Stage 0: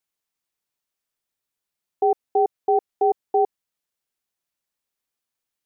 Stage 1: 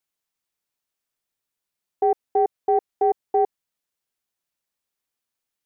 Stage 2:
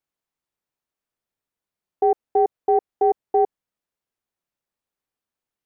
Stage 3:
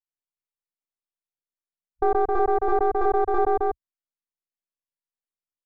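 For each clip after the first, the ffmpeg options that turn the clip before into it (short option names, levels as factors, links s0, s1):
-af "acontrast=25,volume=0.562"
-af "highshelf=f=2000:g=-10.5,volume=1.33"
-af "aeval=exprs='if(lt(val(0),0),0.251*val(0),val(0))':c=same,afwtdn=0.0251,aecho=1:1:125.4|265.3:0.891|0.708"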